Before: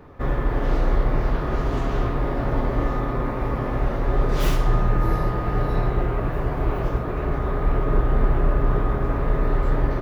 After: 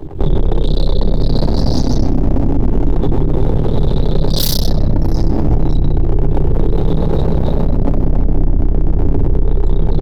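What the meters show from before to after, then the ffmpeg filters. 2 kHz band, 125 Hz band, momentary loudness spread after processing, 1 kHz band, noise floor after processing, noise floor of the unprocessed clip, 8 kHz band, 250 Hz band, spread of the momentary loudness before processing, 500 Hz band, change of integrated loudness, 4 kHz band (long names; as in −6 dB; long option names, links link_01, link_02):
−7.5 dB, +8.5 dB, 1 LU, −1.0 dB, −16 dBFS, −26 dBFS, can't be measured, +10.0 dB, 4 LU, +5.5 dB, +7.5 dB, +15.5 dB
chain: -filter_complex "[0:a]afftfilt=real='re*pow(10,10/40*sin(2*PI*(0.67*log(max(b,1)*sr/1024/100)/log(2)-(0.32)*(pts-256)/sr)))':imag='im*pow(10,10/40*sin(2*PI*(0.67*log(max(b,1)*sr/1024/100)/log(2)-(0.32)*(pts-256)/sr)))':win_size=1024:overlap=0.75,firequalizer=gain_entry='entry(340,0);entry(990,-22);entry(3800,11)':delay=0.05:min_phase=1,afftdn=noise_reduction=23:noise_floor=-36,asplit=2[link_01][link_02];[link_02]adelay=125,lowpass=frequency=2100:poles=1,volume=-6.5dB,asplit=2[link_03][link_04];[link_04]adelay=125,lowpass=frequency=2100:poles=1,volume=0.34,asplit=2[link_05][link_06];[link_06]adelay=125,lowpass=frequency=2100:poles=1,volume=0.34,asplit=2[link_07][link_08];[link_08]adelay=125,lowpass=frequency=2100:poles=1,volume=0.34[link_09];[link_01][link_03][link_05][link_07][link_09]amix=inputs=5:normalize=0,aeval=exprs='max(val(0),0)':channel_layout=same,acompressor=threshold=-22dB:ratio=6,bandreject=frequency=60:width_type=h:width=6,bandreject=frequency=120:width_type=h:width=6,bandreject=frequency=180:width_type=h:width=6,bandreject=frequency=240:width_type=h:width=6,bandreject=frequency=300:width_type=h:width=6,bandreject=frequency=360:width_type=h:width=6,bandreject=frequency=420:width_type=h:width=6,bandreject=frequency=480:width_type=h:width=6,bandreject=frequency=540:width_type=h:width=6,acrossover=split=290|3000[link_10][link_11][link_12];[link_11]acompressor=threshold=-41dB:ratio=3[link_13];[link_10][link_13][link_12]amix=inputs=3:normalize=0,equalizer=frequency=870:width=4.4:gain=6,alimiter=level_in=27.5dB:limit=-1dB:release=50:level=0:latency=1,volume=-2.5dB"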